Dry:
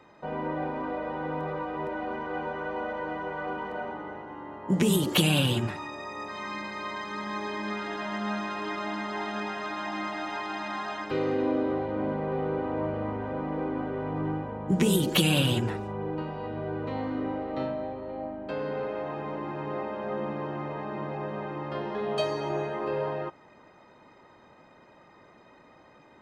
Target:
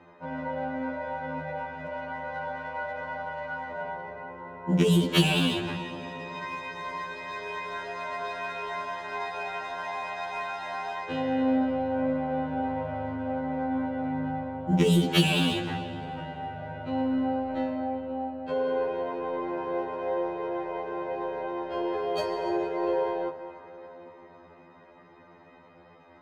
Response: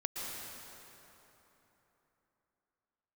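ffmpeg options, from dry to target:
-filter_complex "[0:a]asplit=2[a][b];[1:a]atrim=start_sample=2205,lowpass=6.6k[c];[b][c]afir=irnorm=-1:irlink=0,volume=-9.5dB[d];[a][d]amix=inputs=2:normalize=0,adynamicsmooth=sensitivity=7:basefreq=4.8k,afftfilt=real='re*2*eq(mod(b,4),0)':imag='im*2*eq(mod(b,4),0)':win_size=2048:overlap=0.75,volume=1.5dB"

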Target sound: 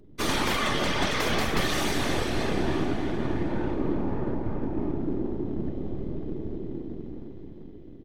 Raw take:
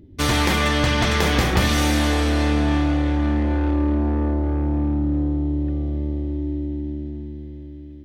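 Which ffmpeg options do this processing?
-filter_complex "[0:a]afftfilt=real='hypot(re,im)*cos(2*PI*random(0))':imag='hypot(re,im)*sin(2*PI*random(1))':win_size=512:overlap=0.75,aecho=1:1:306|612|918|1224|1530:0.224|0.11|0.0538|0.0263|0.0129,aeval=exprs='val(0)+0.00251*(sin(2*PI*50*n/s)+sin(2*PI*2*50*n/s)/2+sin(2*PI*3*50*n/s)/3+sin(2*PI*4*50*n/s)/4+sin(2*PI*5*50*n/s)/5)':c=same,bandreject=f=259.9:t=h:w=4,bandreject=f=519.8:t=h:w=4,bandreject=f=779.7:t=h:w=4,bandreject=f=1.0396k:t=h:w=4,bandreject=f=1.2995k:t=h:w=4,bandreject=f=1.5594k:t=h:w=4,bandreject=f=1.8193k:t=h:w=4,bandreject=f=2.0792k:t=h:w=4,bandreject=f=2.3391k:t=h:w=4,bandreject=f=2.599k:t=h:w=4,bandreject=f=2.8589k:t=h:w=4,bandreject=f=3.1188k:t=h:w=4,acrossover=split=200|1200[a][b][c];[a]aeval=exprs='abs(val(0))':c=same[d];[d][b][c]amix=inputs=3:normalize=0"

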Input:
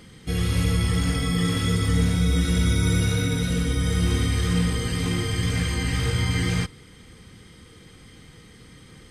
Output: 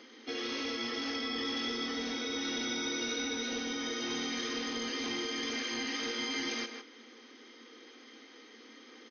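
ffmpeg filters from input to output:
-filter_complex "[0:a]aecho=1:1:156:0.282,acrossover=split=340|3000[a][b][c];[b]acompressor=threshold=-36dB:ratio=6[d];[a][d][c]amix=inputs=3:normalize=0,afftfilt=real='re*between(b*sr/4096,220,6500)':imag='im*between(b*sr/4096,220,6500)':win_size=4096:overlap=0.75,acrossover=split=450[e][f];[e]asoftclip=type=hard:threshold=-36.5dB[g];[g][f]amix=inputs=2:normalize=0,volume=-2.5dB"

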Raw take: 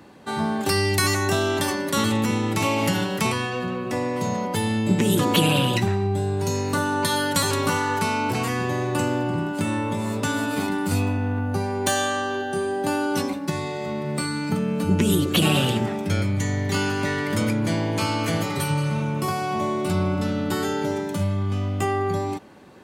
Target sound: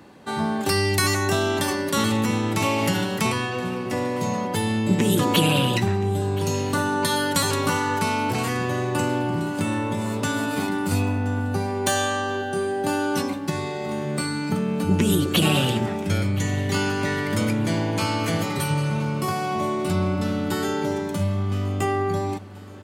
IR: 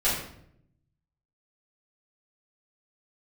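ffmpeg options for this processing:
-af "aecho=1:1:1024|2048|3072|4096:0.126|0.0604|0.029|0.0139"

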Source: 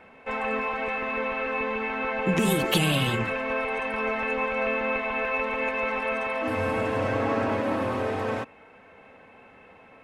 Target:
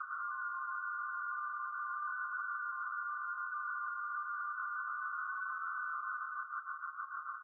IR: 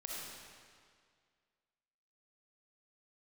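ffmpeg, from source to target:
-filter_complex "[0:a]aemphasis=mode=production:type=cd,asplit=2[a][b];[b]aecho=0:1:233|466|699:0.2|0.0619|0.0192[c];[a][c]amix=inputs=2:normalize=0,asetrate=59535,aresample=44100,asuperpass=centerf=1300:order=20:qfactor=2.7,tremolo=f=6.7:d=0.77,asplit=2[d][e];[e]acompressor=threshold=-46dB:ratio=6,volume=2dB[f];[d][f]amix=inputs=2:normalize=0,aecho=1:1:6.6:0.48,alimiter=level_in=25.5dB:limit=-24dB:level=0:latency=1:release=193,volume=-25.5dB,volume=16dB" -ar 22050 -c:a libvorbis -b:a 16k

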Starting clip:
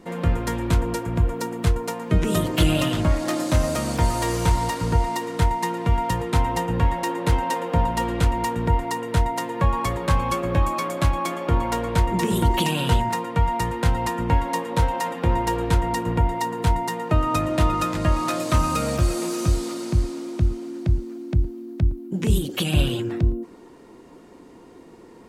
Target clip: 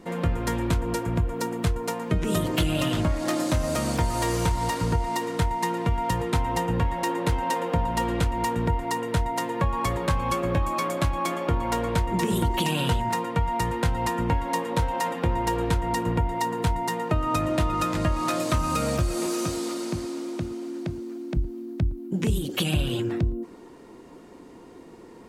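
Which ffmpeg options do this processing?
-filter_complex "[0:a]asettb=1/sr,asplit=3[a][b][c];[a]atrim=end=19.264[d];[b]atrim=start=19.26:end=21.37,asetpts=PTS-STARTPTS,afade=t=in:d=0.004:c=qsin,afade=t=out:st=2.106:d=0.004:c=qsin,highpass=200[e];[c]atrim=start=21.366[f];[d][e]acrossfade=d=0.004:c1=hsin:c2=qsin[g];[g][f]acrossfade=d=0.004:c1=qsin:c2=hsin,acompressor=threshold=-20dB:ratio=5"

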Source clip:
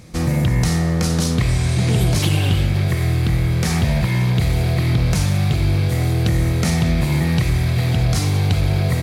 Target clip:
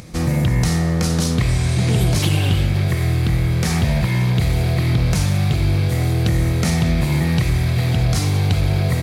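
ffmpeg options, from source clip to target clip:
-af "acompressor=mode=upward:threshold=-33dB:ratio=2.5"

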